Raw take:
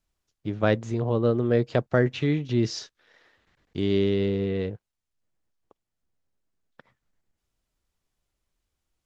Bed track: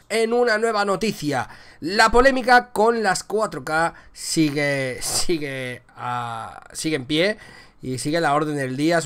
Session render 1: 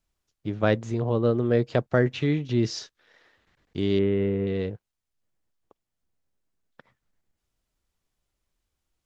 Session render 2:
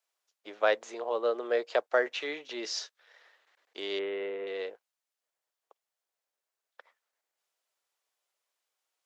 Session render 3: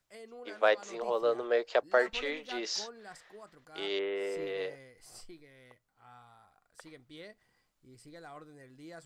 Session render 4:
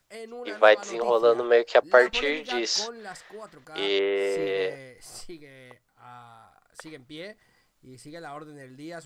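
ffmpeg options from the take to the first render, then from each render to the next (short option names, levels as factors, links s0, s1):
-filter_complex "[0:a]asettb=1/sr,asplit=3[s0][s1][s2];[s0]atrim=end=3.994[s3];[s1]atrim=start=3.99:end=4.47,asetpts=PTS-STARTPTS,afade=t=in:d=0.004:c=qsin,afade=t=out:st=0.476:d=0.004:c=qsin,lowpass=f=2400:w=0.5412,lowpass=f=2400:w=1.3066[s4];[s2]atrim=start=4.466[s5];[s3][s4]acrossfade=d=0.004:c1=hsin:c2=qsin[s6];[s6][s5]acrossfade=d=0.004:c1=qsin:c2=hsin"
-af "highpass=f=510:w=0.5412,highpass=f=510:w=1.3066"
-filter_complex "[1:a]volume=0.0335[s0];[0:a][s0]amix=inputs=2:normalize=0"
-af "volume=2.82"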